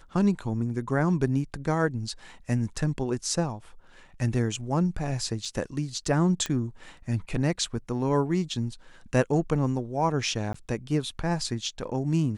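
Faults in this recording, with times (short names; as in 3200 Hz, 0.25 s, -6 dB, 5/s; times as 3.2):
5.45 gap 3.3 ms
6.46 pop -15 dBFS
10.53–10.54 gap 14 ms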